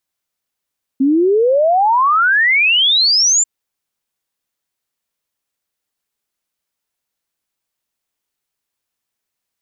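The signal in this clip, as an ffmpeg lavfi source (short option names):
-f lavfi -i "aevalsrc='0.335*clip(min(t,2.44-t)/0.01,0,1)*sin(2*PI*260*2.44/log(7400/260)*(exp(log(7400/260)*t/2.44)-1))':d=2.44:s=44100"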